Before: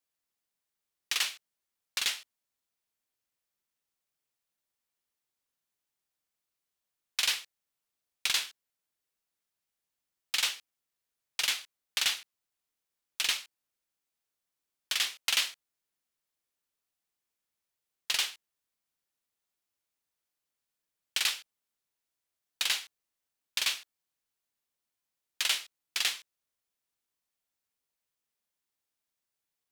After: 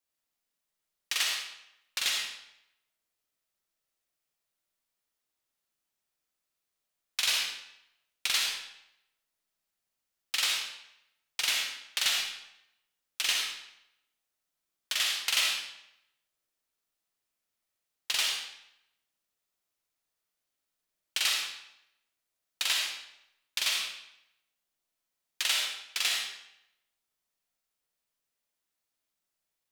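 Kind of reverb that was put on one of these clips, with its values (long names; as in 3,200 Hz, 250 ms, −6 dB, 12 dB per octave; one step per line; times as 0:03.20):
comb and all-pass reverb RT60 0.81 s, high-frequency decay 0.9×, pre-delay 20 ms, DRR −0.5 dB
level −1 dB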